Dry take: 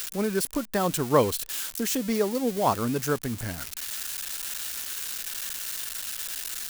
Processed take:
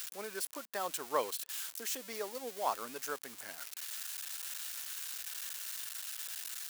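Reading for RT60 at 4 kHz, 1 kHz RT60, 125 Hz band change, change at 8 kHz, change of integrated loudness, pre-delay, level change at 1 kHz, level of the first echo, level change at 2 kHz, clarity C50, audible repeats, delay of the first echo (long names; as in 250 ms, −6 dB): no reverb audible, no reverb audible, −32.5 dB, −8.5 dB, −11.0 dB, no reverb audible, −9.5 dB, no echo audible, −8.5 dB, no reverb audible, no echo audible, no echo audible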